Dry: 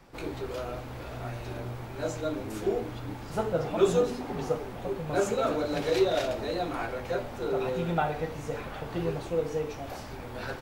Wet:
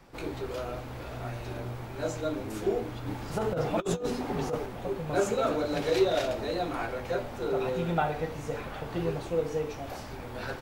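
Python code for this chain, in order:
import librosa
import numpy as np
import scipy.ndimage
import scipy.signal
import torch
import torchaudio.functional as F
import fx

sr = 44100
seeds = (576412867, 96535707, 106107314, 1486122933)

y = fx.over_compress(x, sr, threshold_db=-28.0, ratio=-0.5, at=(3.06, 4.66))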